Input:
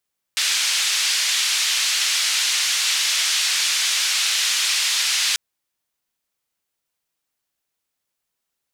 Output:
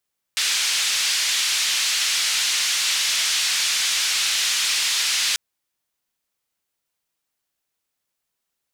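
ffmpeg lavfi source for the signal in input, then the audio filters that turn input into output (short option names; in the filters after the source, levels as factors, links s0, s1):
-f lavfi -i "anoisesrc=c=white:d=4.99:r=44100:seed=1,highpass=f=2300,lowpass=f=5600,volume=-7.7dB"
-af "asoftclip=type=tanh:threshold=0.237"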